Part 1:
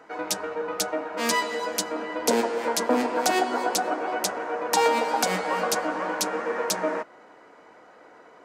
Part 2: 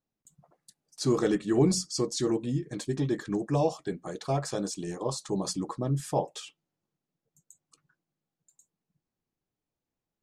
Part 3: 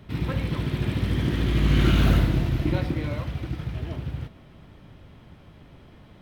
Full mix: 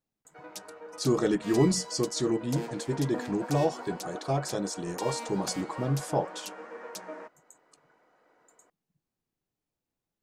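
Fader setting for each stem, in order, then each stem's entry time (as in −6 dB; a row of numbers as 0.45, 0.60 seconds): −15.0 dB, 0.0 dB, muted; 0.25 s, 0.00 s, muted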